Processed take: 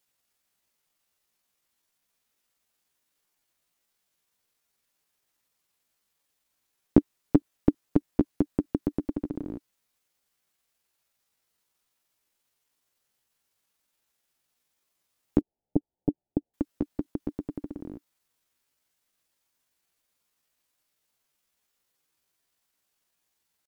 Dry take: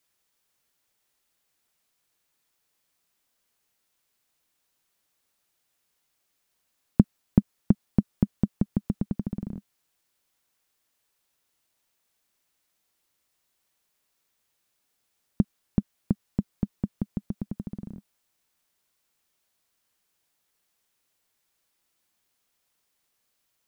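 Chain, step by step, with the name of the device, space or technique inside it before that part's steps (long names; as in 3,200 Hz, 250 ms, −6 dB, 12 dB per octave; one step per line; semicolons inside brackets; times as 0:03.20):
chipmunk voice (pitch shifter +6.5 semitones)
0:15.41–0:16.54: Butterworth low-pass 890 Hz 96 dB per octave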